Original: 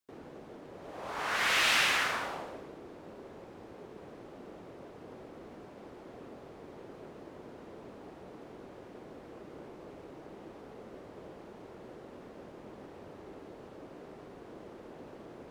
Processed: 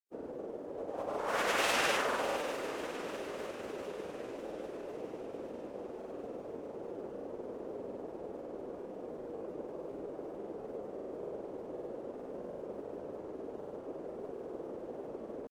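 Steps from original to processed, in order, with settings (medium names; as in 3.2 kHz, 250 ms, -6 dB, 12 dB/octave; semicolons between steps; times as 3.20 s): ten-band graphic EQ 125 Hz -4 dB, 250 Hz +3 dB, 500 Hz +10 dB, 2 kHz -5 dB, 4 kHz -6 dB; echo that smears into a reverb 614 ms, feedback 59%, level -11 dB; granulator, pitch spread up and down by 0 st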